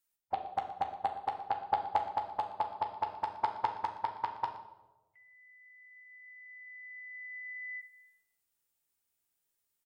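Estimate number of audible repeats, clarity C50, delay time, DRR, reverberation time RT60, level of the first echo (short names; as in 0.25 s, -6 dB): 1, 7.5 dB, 0.118 s, 2.5 dB, 1.1 s, -16.0 dB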